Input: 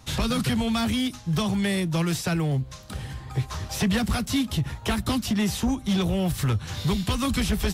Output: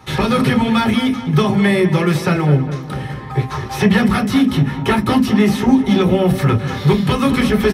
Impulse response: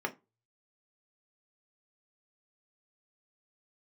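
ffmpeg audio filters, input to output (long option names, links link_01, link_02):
-filter_complex "[0:a]asplit=2[link_01][link_02];[link_02]adelay=204,lowpass=frequency=3000:poles=1,volume=-11dB,asplit=2[link_03][link_04];[link_04]adelay=204,lowpass=frequency=3000:poles=1,volume=0.53,asplit=2[link_05][link_06];[link_06]adelay=204,lowpass=frequency=3000:poles=1,volume=0.53,asplit=2[link_07][link_08];[link_08]adelay=204,lowpass=frequency=3000:poles=1,volume=0.53,asplit=2[link_09][link_10];[link_10]adelay=204,lowpass=frequency=3000:poles=1,volume=0.53,asplit=2[link_11][link_12];[link_12]adelay=204,lowpass=frequency=3000:poles=1,volume=0.53[link_13];[link_01][link_03][link_05][link_07][link_09][link_11][link_13]amix=inputs=7:normalize=0[link_14];[1:a]atrim=start_sample=2205[link_15];[link_14][link_15]afir=irnorm=-1:irlink=0,volume=6dB"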